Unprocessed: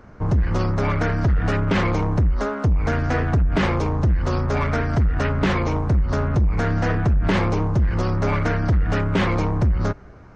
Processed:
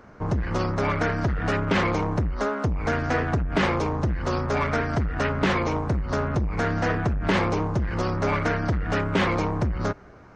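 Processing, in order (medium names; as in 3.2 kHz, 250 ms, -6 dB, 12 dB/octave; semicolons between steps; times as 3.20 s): bass shelf 140 Hz -10 dB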